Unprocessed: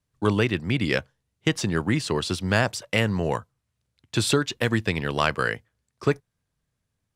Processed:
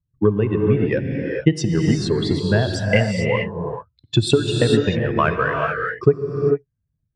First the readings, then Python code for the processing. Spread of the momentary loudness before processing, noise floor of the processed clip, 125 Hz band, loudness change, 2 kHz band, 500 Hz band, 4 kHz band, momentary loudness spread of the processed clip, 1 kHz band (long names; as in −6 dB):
5 LU, −75 dBFS, +7.5 dB, +5.0 dB, +2.0 dB, +8.5 dB, +2.0 dB, 5 LU, +4.0 dB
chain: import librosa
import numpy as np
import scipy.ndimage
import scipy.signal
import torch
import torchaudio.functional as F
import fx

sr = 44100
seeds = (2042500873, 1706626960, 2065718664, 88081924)

y = fx.spec_expand(x, sr, power=2.1)
y = fx.transient(y, sr, attack_db=8, sustain_db=0)
y = fx.rev_gated(y, sr, seeds[0], gate_ms=470, shape='rising', drr_db=1.0)
y = y * 10.0 ** (1.0 / 20.0)